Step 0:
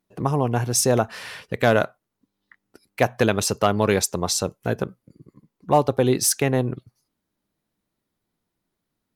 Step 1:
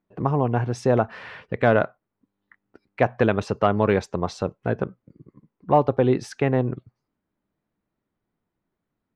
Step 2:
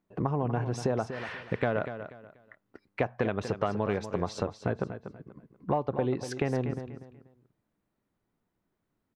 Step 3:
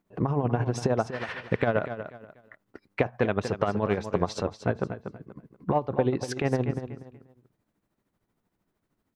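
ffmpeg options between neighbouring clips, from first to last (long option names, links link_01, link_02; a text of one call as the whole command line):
ffmpeg -i in.wav -af "lowpass=2100" out.wav
ffmpeg -i in.wav -af "acompressor=threshold=-26dB:ratio=5,aecho=1:1:242|484|726:0.299|0.0836|0.0234" out.wav
ffmpeg -i in.wav -af "tremolo=f=13:d=0.6,volume=6dB" out.wav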